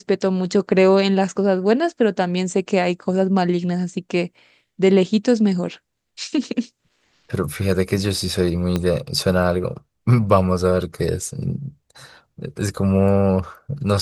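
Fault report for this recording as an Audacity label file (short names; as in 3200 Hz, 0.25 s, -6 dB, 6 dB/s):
8.760000	8.760000	pop -9 dBFS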